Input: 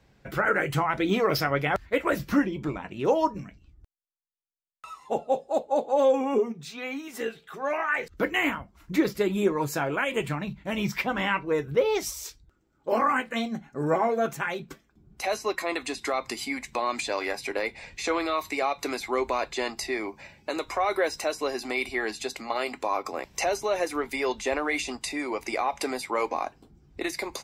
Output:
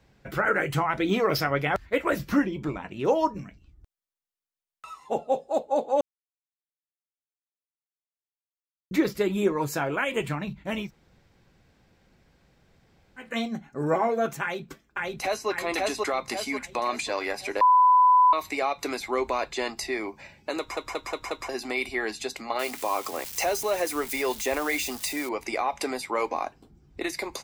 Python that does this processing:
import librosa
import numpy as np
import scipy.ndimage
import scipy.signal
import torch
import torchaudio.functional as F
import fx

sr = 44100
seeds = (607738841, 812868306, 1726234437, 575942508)

y = fx.echo_throw(x, sr, start_s=14.42, length_s=1.07, ms=540, feedback_pct=50, wet_db=-0.5)
y = fx.crossing_spikes(y, sr, level_db=-28.0, at=(22.59, 25.29))
y = fx.edit(y, sr, fx.silence(start_s=6.01, length_s=2.9),
    fx.room_tone_fill(start_s=10.83, length_s=2.41, crossfade_s=0.16),
    fx.bleep(start_s=17.61, length_s=0.72, hz=1000.0, db=-14.0),
    fx.stutter_over(start_s=20.59, slice_s=0.18, count=5), tone=tone)